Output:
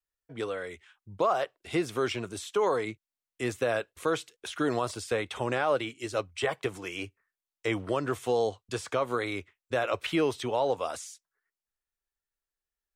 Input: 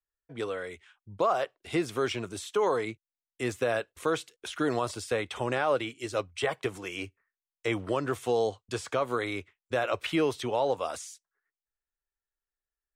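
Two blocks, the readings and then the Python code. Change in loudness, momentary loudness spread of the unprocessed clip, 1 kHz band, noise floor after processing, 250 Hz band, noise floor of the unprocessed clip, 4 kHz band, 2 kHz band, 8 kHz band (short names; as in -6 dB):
0.0 dB, 10 LU, 0.0 dB, under -85 dBFS, 0.0 dB, under -85 dBFS, 0.0 dB, 0.0 dB, 0.0 dB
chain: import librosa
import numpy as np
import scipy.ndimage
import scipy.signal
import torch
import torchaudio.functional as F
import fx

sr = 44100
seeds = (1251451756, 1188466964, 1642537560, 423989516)

y = fx.vibrato(x, sr, rate_hz=2.3, depth_cents=32.0)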